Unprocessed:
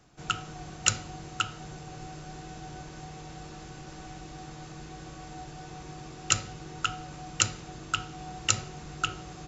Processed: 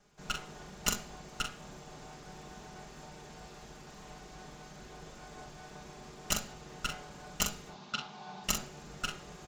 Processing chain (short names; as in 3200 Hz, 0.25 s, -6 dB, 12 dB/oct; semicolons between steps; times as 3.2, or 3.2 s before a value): minimum comb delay 4.9 ms; 7.7–8.44 speaker cabinet 170–5700 Hz, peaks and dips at 200 Hz +5 dB, 310 Hz -8 dB, 510 Hz -8 dB, 880 Hz +8 dB, 1900 Hz -5 dB, 3900 Hz +5 dB; on a send: early reflections 43 ms -6 dB, 63 ms -16 dB; on the sum: gain -5 dB